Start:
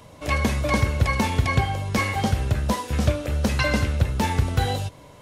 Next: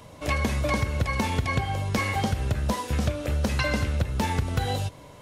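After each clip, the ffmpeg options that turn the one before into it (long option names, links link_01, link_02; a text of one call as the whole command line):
ffmpeg -i in.wav -af "acompressor=threshold=-21dB:ratio=6" out.wav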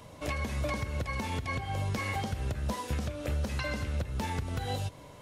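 ffmpeg -i in.wav -af "alimiter=limit=-20dB:level=0:latency=1:release=242,volume=-3dB" out.wav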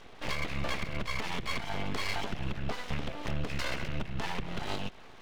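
ffmpeg -i in.wav -af "lowpass=frequency=2900:width_type=q:width=1.9,aeval=exprs='0.126*(cos(1*acos(clip(val(0)/0.126,-1,1)))-cos(1*PI/2))+0.01*(cos(6*acos(clip(val(0)/0.126,-1,1)))-cos(6*PI/2))':channel_layout=same,aeval=exprs='abs(val(0))':channel_layout=same" out.wav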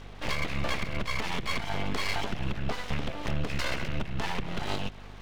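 ffmpeg -i in.wav -af "aeval=exprs='val(0)+0.00355*(sin(2*PI*50*n/s)+sin(2*PI*2*50*n/s)/2+sin(2*PI*3*50*n/s)/3+sin(2*PI*4*50*n/s)/4+sin(2*PI*5*50*n/s)/5)':channel_layout=same,volume=3dB" out.wav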